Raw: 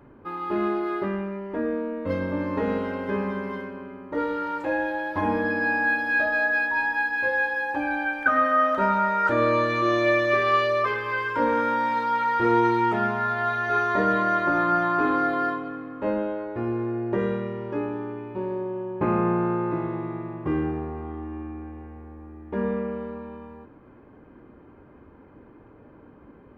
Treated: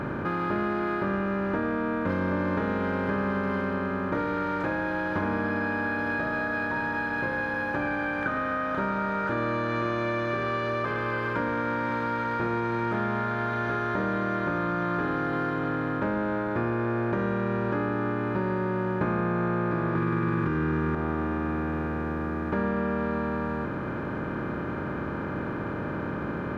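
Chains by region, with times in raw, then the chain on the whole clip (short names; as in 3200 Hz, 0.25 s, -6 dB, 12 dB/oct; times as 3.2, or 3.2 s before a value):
19.95–20.95 Butterworth band-stop 660 Hz, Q 0.98 + fast leveller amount 100%
whole clip: per-bin compression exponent 0.4; compressor, threshold -20 dBFS; bell 160 Hz +9 dB 1.6 oct; gain -6.5 dB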